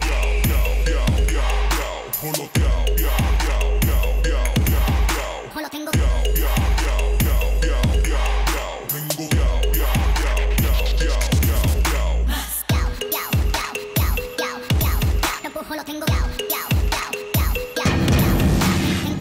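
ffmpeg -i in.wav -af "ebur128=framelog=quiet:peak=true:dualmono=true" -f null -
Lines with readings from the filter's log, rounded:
Integrated loudness:
  I:         -18.0 LUFS
  Threshold: -28.0 LUFS
Loudness range:
  LRA:         2.0 LU
  Threshold: -38.2 LUFS
  LRA low:   -19.3 LUFS
  LRA high:  -17.3 LUFS
True peak:
  Peak:       -9.5 dBFS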